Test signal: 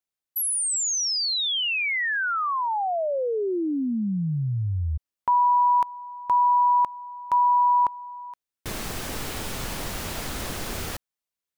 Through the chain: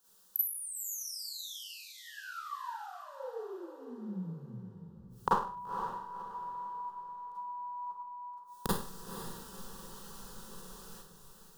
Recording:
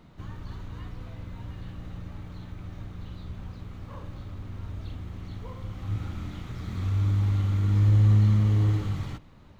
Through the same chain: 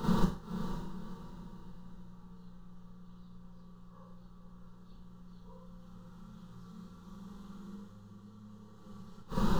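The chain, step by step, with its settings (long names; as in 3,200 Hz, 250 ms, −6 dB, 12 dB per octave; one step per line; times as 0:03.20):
mains-hum notches 50/100/150 Hz
in parallel at −2 dB: downward compressor 16 to 1, threshold −30 dBFS
on the sum: brickwall limiter −21 dBFS
gate with flip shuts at −32 dBFS, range −39 dB
phaser with its sweep stopped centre 440 Hz, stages 8
on a send: feedback delay with all-pass diffusion 510 ms, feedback 41%, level −8.5 dB
on the sum: four-comb reverb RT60 0.43 s, combs from 33 ms, DRR −8 dB
level +13.5 dB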